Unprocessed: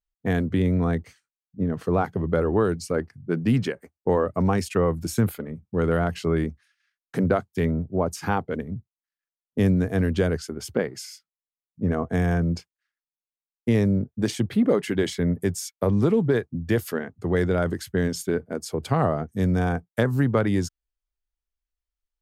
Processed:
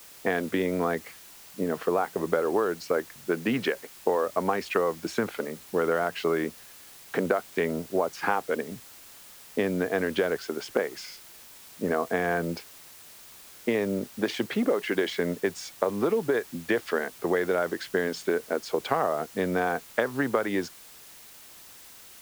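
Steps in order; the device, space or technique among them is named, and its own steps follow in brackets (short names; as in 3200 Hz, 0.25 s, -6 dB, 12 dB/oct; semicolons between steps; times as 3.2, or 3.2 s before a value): baby monitor (BPF 440–3100 Hz; compressor, threshold -29 dBFS, peak gain reduction 10 dB; white noise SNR 20 dB); gain +7.5 dB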